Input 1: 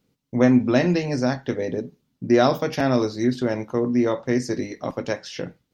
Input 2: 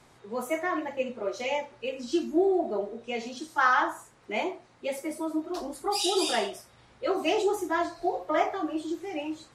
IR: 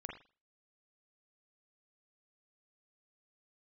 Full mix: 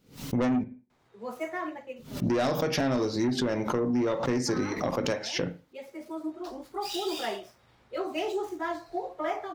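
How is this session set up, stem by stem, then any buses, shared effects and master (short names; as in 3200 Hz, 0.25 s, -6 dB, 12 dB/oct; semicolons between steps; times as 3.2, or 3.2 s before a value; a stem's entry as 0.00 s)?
+0.5 dB, 0.00 s, muted 0.64–1.96, send -8.5 dB, backwards sustainer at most 140 dB/s
-4.5 dB, 0.90 s, no send, median filter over 5 samples; auto duck -11 dB, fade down 0.40 s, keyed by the first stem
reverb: on, pre-delay 40 ms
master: soft clip -15 dBFS, distortion -10 dB; compressor, threshold -24 dBFS, peak gain reduction 7 dB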